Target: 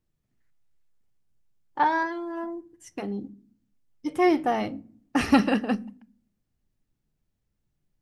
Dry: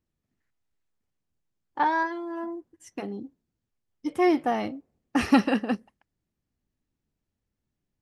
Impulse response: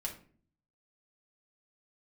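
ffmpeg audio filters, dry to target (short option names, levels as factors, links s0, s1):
-filter_complex "[0:a]asplit=2[s0][s1];[s1]bass=f=250:g=14,treble=f=4000:g=4[s2];[1:a]atrim=start_sample=2205[s3];[s2][s3]afir=irnorm=-1:irlink=0,volume=0.188[s4];[s0][s4]amix=inputs=2:normalize=0"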